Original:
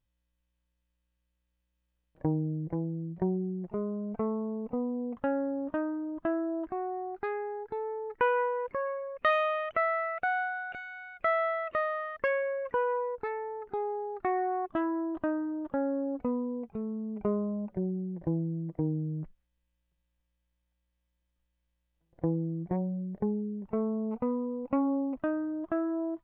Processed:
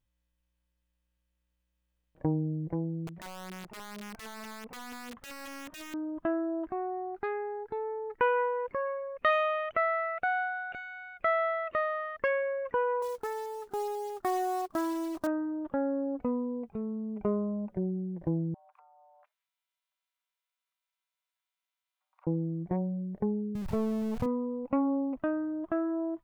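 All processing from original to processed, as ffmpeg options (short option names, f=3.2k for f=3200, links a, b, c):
-filter_complex "[0:a]asettb=1/sr,asplit=3[a][b][c];[a]atrim=end=3.074[d];[b]atrim=start=3.07:end=5.94,asetpts=PTS-STARTPTS,afade=t=in:d=0.004:c=qsin,afade=t=out:st=2.866:d=0.004:c=qsin,equalizer=f=1.8k:t=o:w=1.5:g=8,acompressor=threshold=-40dB:ratio=8:attack=3.2:release=140:knee=1:detection=peak,aeval=exprs='(mod(79.4*val(0)+1,2)-1)/79.4':c=same[e];[c]atrim=start=5.936[f];[d][e]acrossfade=d=0.004:c1=hsin:c2=qsin[g];[g][f]acrossfade=d=0.004:c1=qsin:c2=hsin,asettb=1/sr,asplit=3[h][i][j];[h]atrim=end=13.024[k];[i]atrim=start=13.02:end=15.27,asetpts=PTS-STARTPTS,afade=t=in:d=0.004:c=qsin,afade=t=out:st=2.246:d=0.004:c=qsin,lowpass=f=1.8k:w=0.5412,lowpass=f=1.8k:w=1.3066,lowshelf=f=210:g=-5,acrusher=bits=4:mode=log:mix=0:aa=0.000001[l];[j]atrim=start=15.266[m];[k][l]acrossfade=d=0.004:c1=hsin:c2=qsin[n];[n][m]acrossfade=d=0.004:c1=qsin:c2=hsin,asettb=1/sr,asplit=3[o][p][q];[o]atrim=end=18.544[r];[p]atrim=start=18.54:end=22.27,asetpts=PTS-STARTPTS,afade=t=in:d=0.004:c=qsin,afade=t=out:st=3.726:d=0.004:c=qsin,highpass=610,acompressor=threshold=-56dB:ratio=12:attack=3.2:release=140:knee=1:detection=peak,afreqshift=430[s];[q]atrim=start=22.266[t];[r][s]acrossfade=d=0.004:c1=hsin:c2=qsin[u];[u][t]acrossfade=d=0.004:c1=qsin:c2=hsin,asettb=1/sr,asplit=3[v][w][x];[v]atrim=end=23.554[y];[w]atrim=start=23.55:end=24.26,asetpts=PTS-STARTPTS,afade=t=in:d=0.004:c=qsin,afade=t=out:st=0.706:d=0.004:c=qsin,aeval=exprs='val(0)+0.5*0.0106*sgn(val(0))':c=same,lowshelf=f=170:t=q:w=1.5:g=11[z];[x]atrim=start=24.256[aa];[y][z]acrossfade=d=0.004:c1=hsin:c2=qsin[ab];[ab][aa]acrossfade=d=0.004:c1=qsin:c2=hsin"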